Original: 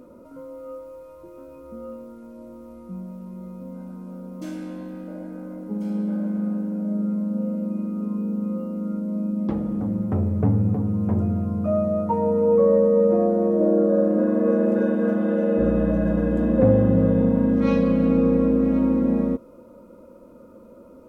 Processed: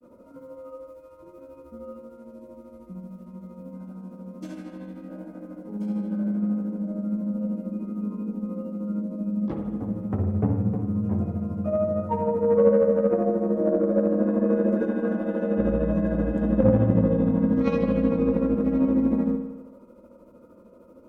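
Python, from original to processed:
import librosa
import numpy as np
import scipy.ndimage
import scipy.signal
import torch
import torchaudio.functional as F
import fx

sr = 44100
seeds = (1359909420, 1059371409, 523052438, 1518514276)

y = fx.granulator(x, sr, seeds[0], grain_ms=119.0, per_s=13.0, spray_ms=10.0, spread_st=0)
y = fx.cheby_harmonics(y, sr, harmonics=(3, 8), levels_db=(-22, -42), full_scale_db=-6.5)
y = fx.rev_spring(y, sr, rt60_s=1.0, pass_ms=(53,), chirp_ms=30, drr_db=6.0)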